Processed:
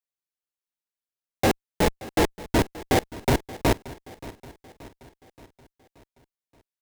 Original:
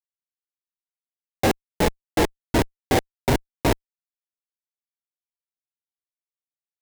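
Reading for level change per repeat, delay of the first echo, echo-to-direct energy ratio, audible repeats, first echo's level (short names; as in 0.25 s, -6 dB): -5.5 dB, 0.577 s, -17.0 dB, 4, -18.5 dB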